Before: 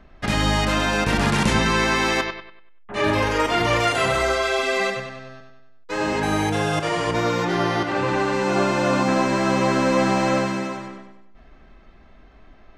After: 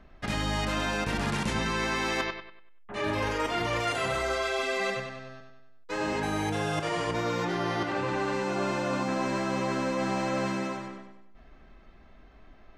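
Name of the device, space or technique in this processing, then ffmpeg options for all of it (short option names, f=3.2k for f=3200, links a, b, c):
compression on the reversed sound: -af "areverse,acompressor=threshold=-21dB:ratio=6,areverse,volume=-4.5dB"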